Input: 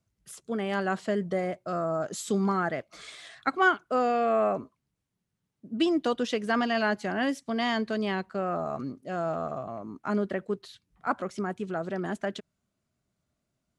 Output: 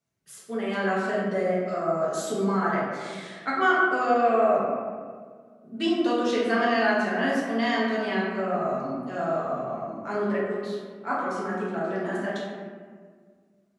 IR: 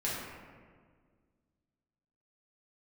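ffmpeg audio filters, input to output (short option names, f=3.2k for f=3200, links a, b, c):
-filter_complex "[0:a]highpass=f=310:p=1[a];[1:a]atrim=start_sample=2205[b];[a][b]afir=irnorm=-1:irlink=0,volume=-2dB"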